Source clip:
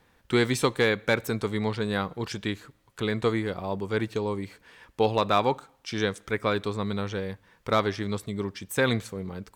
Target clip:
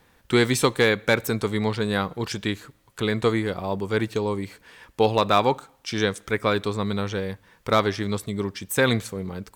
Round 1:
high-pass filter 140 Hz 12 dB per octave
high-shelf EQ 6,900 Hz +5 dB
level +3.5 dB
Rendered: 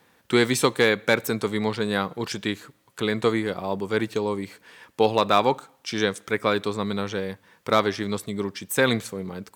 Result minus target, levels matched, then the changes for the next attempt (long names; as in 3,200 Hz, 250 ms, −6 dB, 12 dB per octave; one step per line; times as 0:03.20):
125 Hz band −4.5 dB
remove: high-pass filter 140 Hz 12 dB per octave